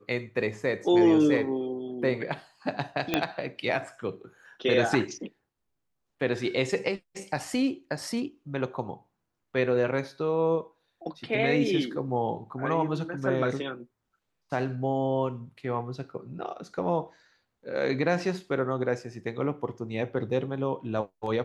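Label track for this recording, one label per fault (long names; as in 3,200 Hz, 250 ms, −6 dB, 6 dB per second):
3.140000	3.140000	click −9 dBFS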